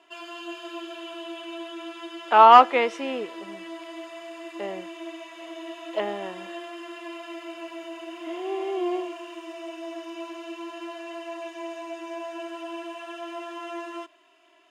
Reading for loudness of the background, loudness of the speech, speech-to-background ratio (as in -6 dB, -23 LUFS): -38.0 LUFS, -20.0 LUFS, 18.0 dB